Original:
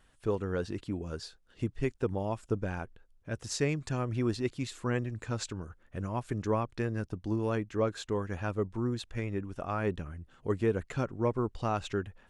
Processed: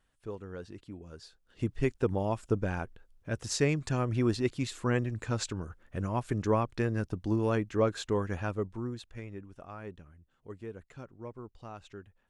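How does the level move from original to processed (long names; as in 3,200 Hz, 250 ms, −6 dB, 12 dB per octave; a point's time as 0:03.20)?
0:01.15 −9.5 dB
0:01.71 +2.5 dB
0:08.28 +2.5 dB
0:09.01 −6.5 dB
0:10.14 −14 dB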